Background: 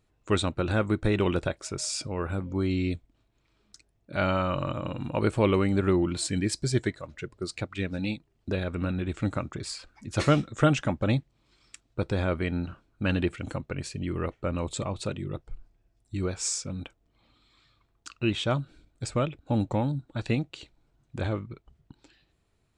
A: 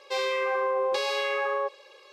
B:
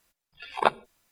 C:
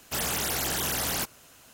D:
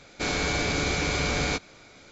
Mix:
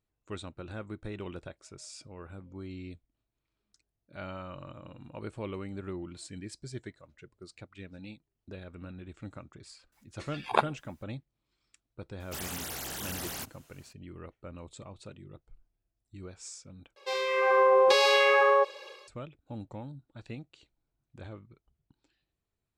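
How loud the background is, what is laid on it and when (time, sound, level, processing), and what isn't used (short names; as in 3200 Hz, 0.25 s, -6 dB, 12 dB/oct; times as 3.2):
background -15 dB
9.92 add B -3 dB
12.2 add C -9.5 dB
16.96 replace with A -4.5 dB + AGC gain up to 10.5 dB
not used: D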